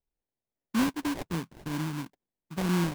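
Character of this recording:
phaser sweep stages 4, 3 Hz, lowest notch 420–1,200 Hz
aliases and images of a low sample rate 1,300 Hz, jitter 20%

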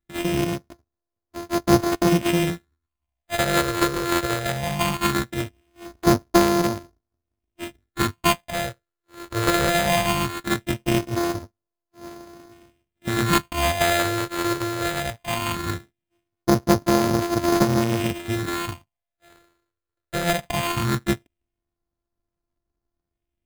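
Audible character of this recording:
a buzz of ramps at a fixed pitch in blocks of 128 samples
phaser sweep stages 6, 0.19 Hz, lowest notch 210–3,200 Hz
aliases and images of a low sample rate 5,600 Hz, jitter 0%

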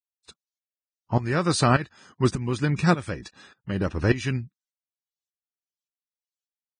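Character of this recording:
tremolo saw up 1.7 Hz, depth 85%
Ogg Vorbis

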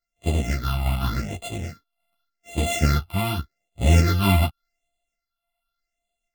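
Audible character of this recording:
a buzz of ramps at a fixed pitch in blocks of 64 samples
phaser sweep stages 6, 0.86 Hz, lowest notch 430–1,500 Hz
sample-and-hold tremolo
a shimmering, thickened sound

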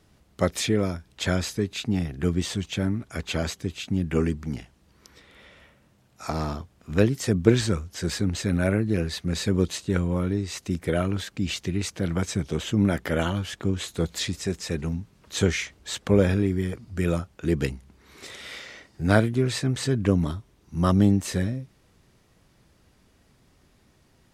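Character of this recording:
background noise floor −61 dBFS
spectral slope −6.0 dB per octave

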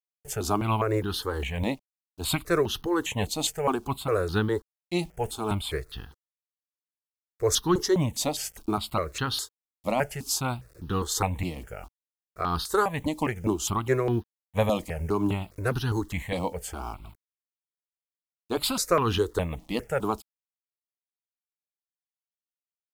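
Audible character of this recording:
a quantiser's noise floor 10 bits, dither none
tremolo triangle 4.4 Hz, depth 45%
notches that jump at a steady rate 4.9 Hz 410–2,200 Hz

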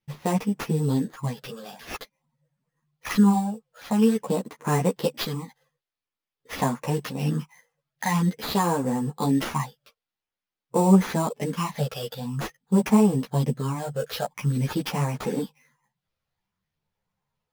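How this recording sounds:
phaser sweep stages 8, 0.48 Hz, lowest notch 270–4,100 Hz
aliases and images of a low sample rate 8,200 Hz, jitter 0%
a shimmering, thickened sound

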